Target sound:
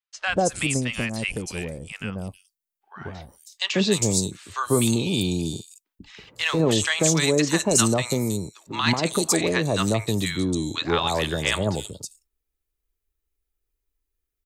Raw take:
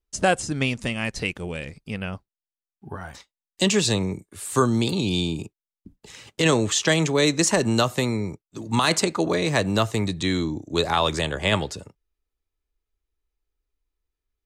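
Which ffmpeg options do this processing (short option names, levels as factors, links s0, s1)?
-filter_complex "[0:a]highshelf=f=8000:g=10.5,acrossover=split=940|4700[s0][s1][s2];[s0]adelay=140[s3];[s2]adelay=320[s4];[s3][s1][s4]amix=inputs=3:normalize=0"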